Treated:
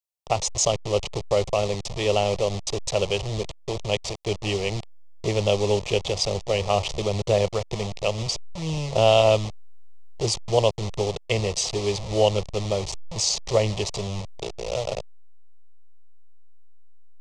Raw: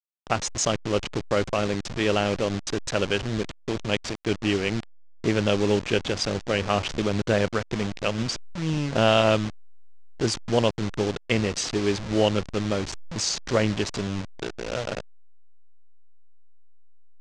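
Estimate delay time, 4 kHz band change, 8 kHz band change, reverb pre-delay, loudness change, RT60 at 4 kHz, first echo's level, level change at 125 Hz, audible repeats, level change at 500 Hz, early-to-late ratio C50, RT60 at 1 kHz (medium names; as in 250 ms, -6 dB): no echo, +1.5 dB, +3.5 dB, no reverb, +1.0 dB, no reverb, no echo, +1.5 dB, no echo, +2.5 dB, no reverb, no reverb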